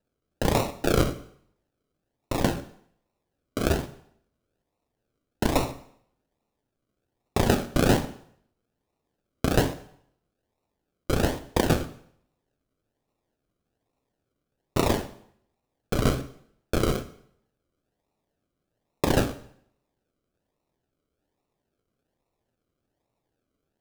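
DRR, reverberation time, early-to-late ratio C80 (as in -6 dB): 10.0 dB, 0.65 s, 16.5 dB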